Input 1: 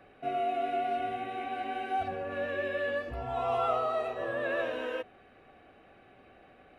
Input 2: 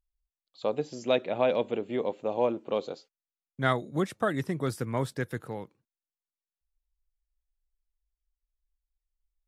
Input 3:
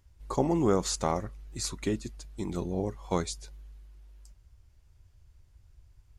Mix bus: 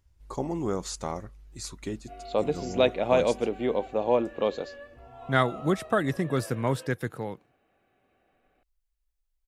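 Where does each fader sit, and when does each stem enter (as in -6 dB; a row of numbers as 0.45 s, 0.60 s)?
-12.5 dB, +3.0 dB, -4.5 dB; 1.85 s, 1.70 s, 0.00 s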